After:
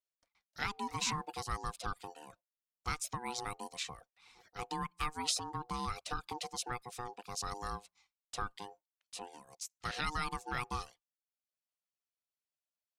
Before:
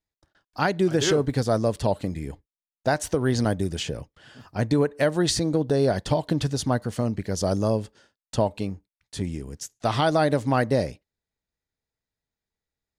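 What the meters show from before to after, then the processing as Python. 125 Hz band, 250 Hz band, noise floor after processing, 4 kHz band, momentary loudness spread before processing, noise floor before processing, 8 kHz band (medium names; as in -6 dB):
-21.5 dB, -23.0 dB, under -85 dBFS, -8.5 dB, 12 LU, under -85 dBFS, -7.5 dB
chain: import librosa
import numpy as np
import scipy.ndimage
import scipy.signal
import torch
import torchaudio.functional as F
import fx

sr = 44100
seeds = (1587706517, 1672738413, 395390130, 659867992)

y = fx.dereverb_blind(x, sr, rt60_s=0.57)
y = y * np.sin(2.0 * np.pi * 610.0 * np.arange(len(y)) / sr)
y = fx.tone_stack(y, sr, knobs='5-5-5')
y = y * 10.0 ** (2.0 / 20.0)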